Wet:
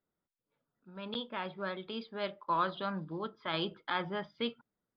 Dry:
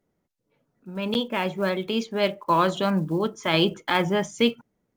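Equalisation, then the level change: rippled Chebyshev low-pass 5000 Hz, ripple 9 dB; -6.5 dB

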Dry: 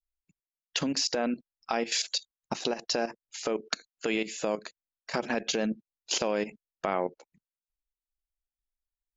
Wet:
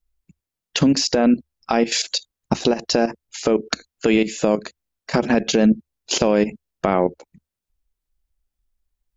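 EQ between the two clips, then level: bell 73 Hz +6.5 dB 0.26 oct; low shelf 370 Hz +12 dB; +7.0 dB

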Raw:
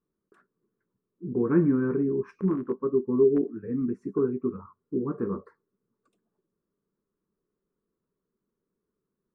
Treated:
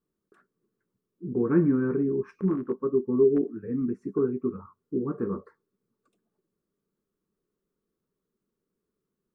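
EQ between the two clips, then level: notch 1000 Hz, Q 15; 0.0 dB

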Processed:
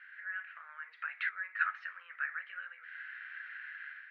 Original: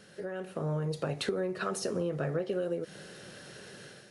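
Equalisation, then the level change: Chebyshev high-pass 1500 Hz, order 4; elliptic low-pass 2100 Hz, stop band 80 dB; tilt +3 dB/oct; +8.5 dB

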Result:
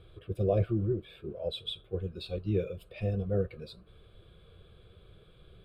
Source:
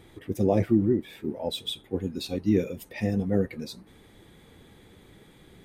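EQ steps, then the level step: air absorption 66 m; low shelf 110 Hz +8 dB; fixed phaser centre 1300 Hz, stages 8; -2.5 dB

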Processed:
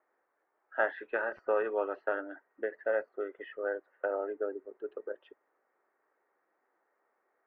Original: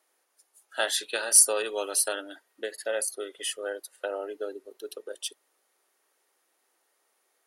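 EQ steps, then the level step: steep low-pass 1900 Hz 36 dB/oct; 0.0 dB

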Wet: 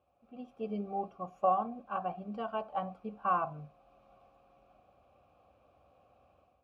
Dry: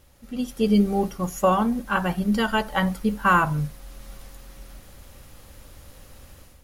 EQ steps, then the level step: vowel filter a; HPF 55 Hz 24 dB/oct; tilt -3.5 dB/oct; -2.5 dB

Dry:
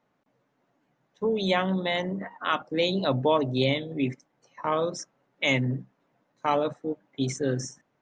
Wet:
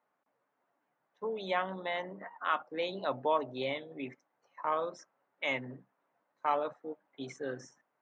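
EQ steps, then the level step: band-pass 1100 Hz, Q 0.88; -3.5 dB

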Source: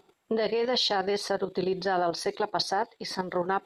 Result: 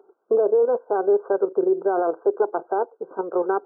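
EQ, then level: resonant high-pass 410 Hz, resonance Q 3.6; brick-wall FIR low-pass 1600 Hz; 0.0 dB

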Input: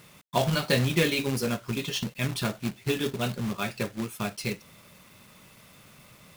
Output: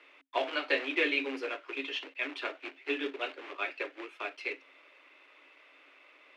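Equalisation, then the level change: Chebyshev high-pass 270 Hz, order 10; synth low-pass 2500 Hz, resonance Q 2.2; -5.5 dB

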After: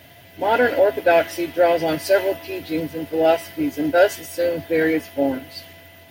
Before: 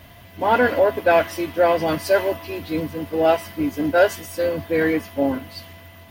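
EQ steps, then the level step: HPF 130 Hz 12 dB/oct; bell 210 Hz -15 dB 0.22 oct; bell 1100 Hz -14 dB 0.31 oct; +1.5 dB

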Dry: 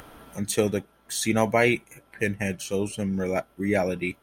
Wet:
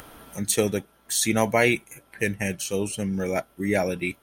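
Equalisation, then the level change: high shelf 4100 Hz +7 dB; 0.0 dB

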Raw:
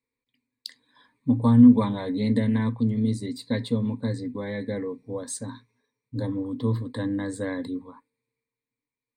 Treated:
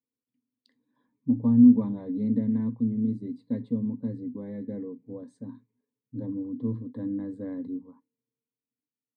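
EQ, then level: band-pass 230 Hz, Q 1.3; -1.5 dB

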